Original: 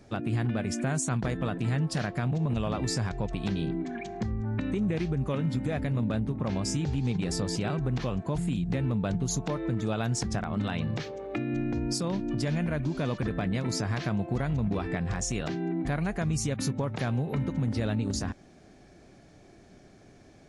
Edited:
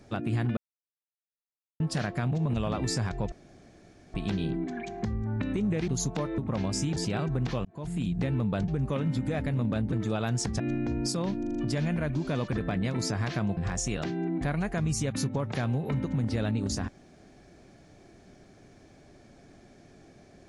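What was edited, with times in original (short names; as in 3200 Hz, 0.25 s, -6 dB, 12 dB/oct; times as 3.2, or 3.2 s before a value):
0.57–1.8 mute
3.32 insert room tone 0.82 s
5.06–6.3 swap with 9.19–9.69
6.88–7.47 cut
8.16–8.57 fade in
10.37–11.46 cut
12.25 stutter 0.04 s, 5 plays
14.27–15.01 cut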